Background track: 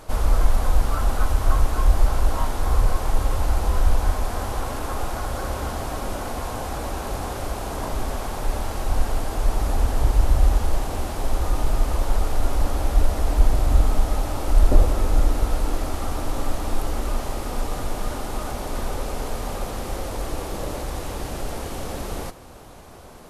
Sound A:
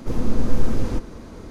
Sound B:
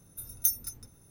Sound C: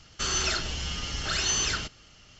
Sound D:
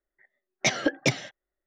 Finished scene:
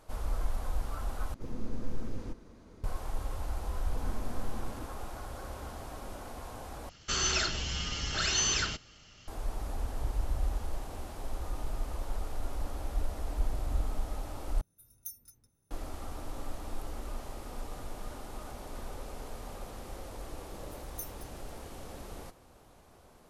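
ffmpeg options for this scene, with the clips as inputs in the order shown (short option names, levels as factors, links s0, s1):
-filter_complex "[1:a]asplit=2[s0][s1];[2:a]asplit=2[s2][s3];[0:a]volume=0.188,asplit=4[s4][s5][s6][s7];[s4]atrim=end=1.344[s8];[s0]atrim=end=1.5,asetpts=PTS-STARTPTS,volume=0.168[s9];[s5]atrim=start=2.836:end=6.894[s10];[3:a]atrim=end=2.39,asetpts=PTS-STARTPTS,volume=0.794[s11];[s6]atrim=start=9.276:end=14.614[s12];[s2]atrim=end=1.1,asetpts=PTS-STARTPTS,volume=0.141[s13];[s7]atrim=start=15.706[s14];[s1]atrim=end=1.5,asetpts=PTS-STARTPTS,volume=0.126,afade=t=in:d=0.004:c=hsin,afade=t=out:st=1.496:d=0.004:c=hsin,adelay=3860[s15];[s3]atrim=end=1.1,asetpts=PTS-STARTPTS,volume=0.158,afade=t=in:d=0.004:c=hsin,afade=t=out:st=1.096:d=0.004:c=hsin,adelay=20540[s16];[s8][s9]acrossfade=d=0.004:c1=hsin:c2=hsin[s17];[s17][s10]acrossfade=d=0.004:c1=hsin:c2=hsin[s18];[s18][s11]acrossfade=d=0.004:c1=hsin:c2=hsin[s19];[s19][s12]acrossfade=d=0.004:c1=hsin:c2=hsin[s20];[s20][s13]acrossfade=d=0.004:c1=hsin:c2=hsin[s21];[s21][s14]acrossfade=d=0.004:c1=hsin:c2=hsin[s22];[s22][s15][s16]amix=inputs=3:normalize=0"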